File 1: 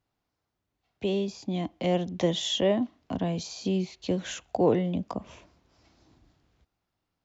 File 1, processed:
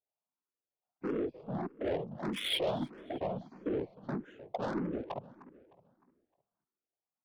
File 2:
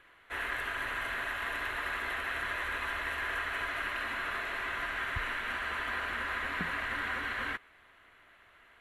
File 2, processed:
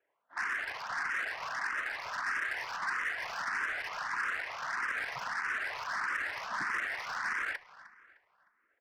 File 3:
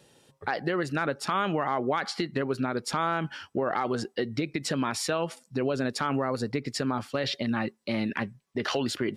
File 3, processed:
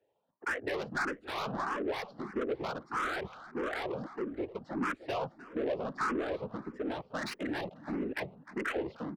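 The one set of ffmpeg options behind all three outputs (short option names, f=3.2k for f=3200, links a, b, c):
-filter_complex "[0:a]highpass=f=240:p=1,afwtdn=0.02,highshelf=f=3.1k:g=4.5,acrossover=split=450|1300[a][b][c];[b]acompressor=threshold=-44dB:ratio=6[d];[a][d][c]amix=inputs=3:normalize=0,afftfilt=real='hypot(re,im)*cos(2*PI*random(0))':imag='hypot(re,im)*sin(2*PI*random(1))':win_size=512:overlap=0.75,adynamicsmooth=sensitivity=7:basefreq=870,asplit=2[e][f];[f]highpass=f=720:p=1,volume=24dB,asoftclip=type=tanh:threshold=-22.5dB[g];[e][g]amix=inputs=2:normalize=0,lowpass=f=4.2k:p=1,volume=-6dB,asplit=2[h][i];[i]adelay=306,lowpass=f=4.2k:p=1,volume=-17dB,asplit=2[j][k];[k]adelay=306,lowpass=f=4.2k:p=1,volume=0.42,asplit=2[l][m];[m]adelay=306,lowpass=f=4.2k:p=1,volume=0.42,asplit=2[n][o];[o]adelay=306,lowpass=f=4.2k:p=1,volume=0.42[p];[h][j][l][n][p]amix=inputs=5:normalize=0,asplit=2[q][r];[r]afreqshift=1.6[s];[q][s]amix=inputs=2:normalize=1"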